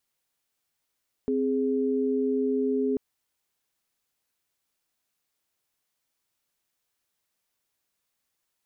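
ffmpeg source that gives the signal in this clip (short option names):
-f lavfi -i "aevalsrc='0.0531*(sin(2*PI*261.63*t)+sin(2*PI*415.3*t))':d=1.69:s=44100"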